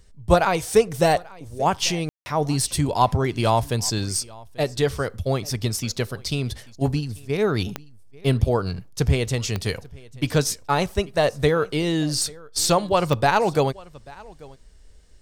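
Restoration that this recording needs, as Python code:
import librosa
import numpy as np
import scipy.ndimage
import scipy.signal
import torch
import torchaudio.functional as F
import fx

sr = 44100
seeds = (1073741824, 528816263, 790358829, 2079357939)

y = fx.fix_declick_ar(x, sr, threshold=10.0)
y = fx.fix_ambience(y, sr, seeds[0], print_start_s=14.58, print_end_s=15.08, start_s=2.09, end_s=2.26)
y = fx.fix_echo_inverse(y, sr, delay_ms=839, level_db=-23.0)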